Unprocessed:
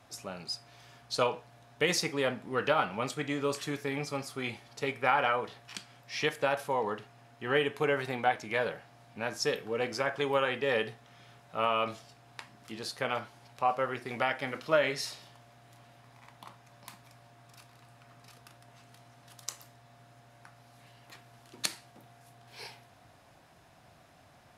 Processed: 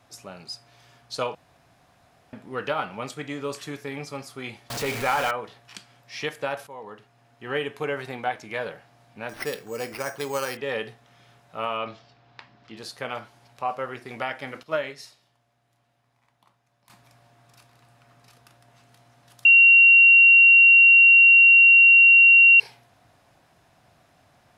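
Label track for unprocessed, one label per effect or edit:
1.350000	2.330000	room tone
4.700000	5.310000	zero-crossing step of -26.5 dBFS
6.670000	7.580000	fade in, from -12.5 dB
9.290000	10.570000	careless resampling rate divided by 6×, down none, up hold
11.770000	12.770000	LPF 5000 Hz 24 dB/oct
14.630000	16.900000	upward expander, over -47 dBFS
19.450000	22.600000	bleep 2750 Hz -9.5 dBFS

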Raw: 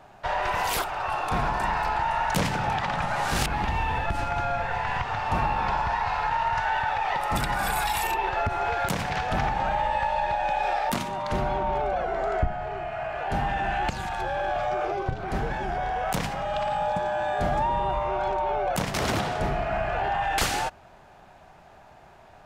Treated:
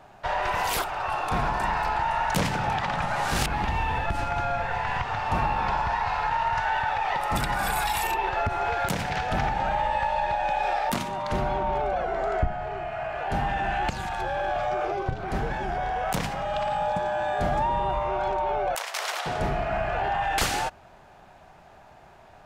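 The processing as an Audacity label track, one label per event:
8.900000	9.710000	notch 1100 Hz, Q 10
18.750000	19.260000	Bessel high-pass 890 Hz, order 6

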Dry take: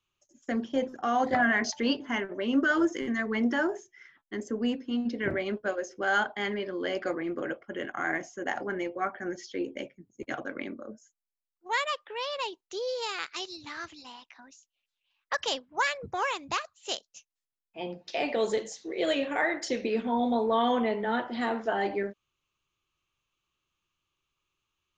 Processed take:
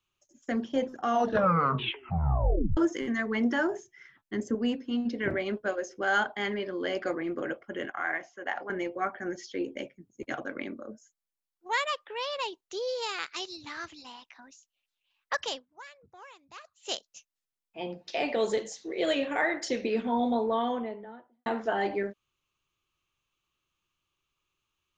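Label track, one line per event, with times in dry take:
1.090000	1.090000	tape stop 1.68 s
3.710000	4.550000	bell 110 Hz +9.5 dB 1.9 oct
7.900000	8.700000	three-band isolator lows -13 dB, under 520 Hz, highs -21 dB, over 4500 Hz
15.340000	16.940000	dip -20 dB, fades 0.40 s
20.140000	21.460000	studio fade out

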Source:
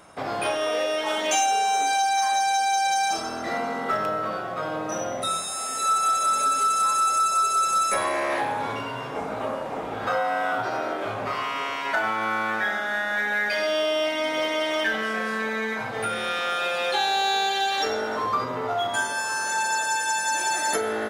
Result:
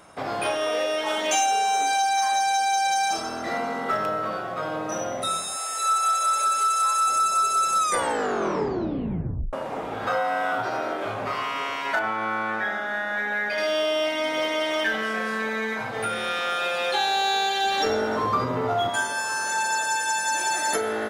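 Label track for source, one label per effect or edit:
5.570000	7.080000	HPF 550 Hz
7.780000	7.780000	tape stop 1.75 s
11.990000	13.580000	high shelf 3300 Hz -9.5 dB
17.640000	18.900000	low shelf 340 Hz +9.5 dB

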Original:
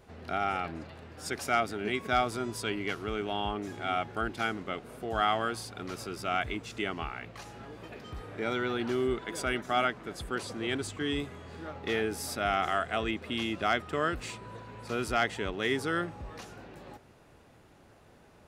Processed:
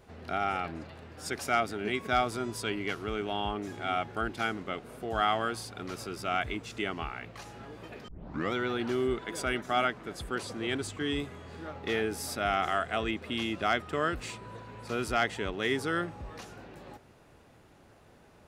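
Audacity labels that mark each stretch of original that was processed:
8.080000	8.080000	tape start 0.45 s

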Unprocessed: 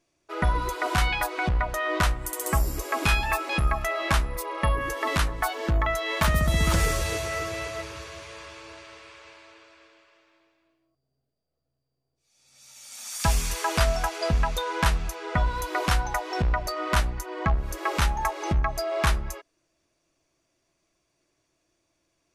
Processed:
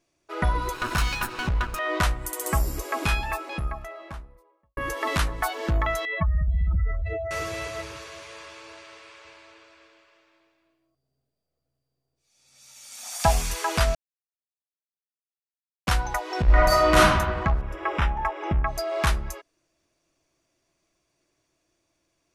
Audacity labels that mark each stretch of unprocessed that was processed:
0.740000	1.790000	minimum comb delay 0.74 ms
2.620000	4.770000	studio fade out
6.050000	7.310000	spectral contrast raised exponent 3.2
7.970000	9.250000	low shelf 140 Hz -11 dB
13.030000	13.430000	bell 720 Hz +13.5 dB 0.55 oct
13.950000	15.870000	mute
16.450000	16.980000	reverb throw, RT60 1.2 s, DRR -9.5 dB
17.610000	18.670000	polynomial smoothing over 25 samples

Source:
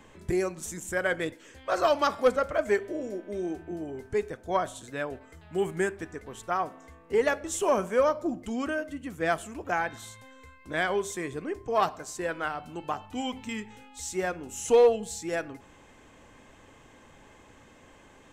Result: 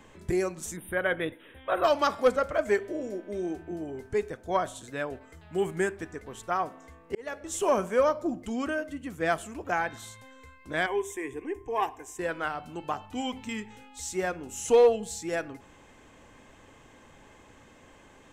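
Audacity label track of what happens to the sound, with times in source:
0.760000	1.840000	spectral delete 3900–8800 Hz
7.150000	7.630000	fade in
10.860000	12.190000	fixed phaser centre 890 Hz, stages 8

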